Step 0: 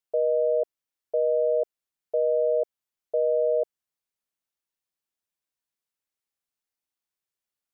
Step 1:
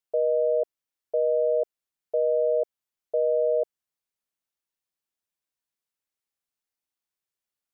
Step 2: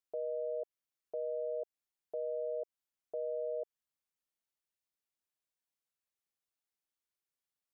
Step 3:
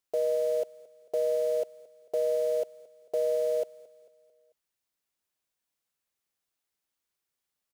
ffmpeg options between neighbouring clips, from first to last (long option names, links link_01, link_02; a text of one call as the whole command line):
ffmpeg -i in.wav -af anull out.wav
ffmpeg -i in.wav -af "alimiter=level_in=2dB:limit=-24dB:level=0:latency=1:release=116,volume=-2dB,volume=-5dB" out.wav
ffmpeg -i in.wav -filter_complex "[0:a]asplit=2[link_01][link_02];[link_02]acrusher=bits=7:mix=0:aa=0.000001,volume=-5dB[link_03];[link_01][link_03]amix=inputs=2:normalize=0,aecho=1:1:222|444|666|888:0.0944|0.0463|0.0227|0.0111,volume=6.5dB" out.wav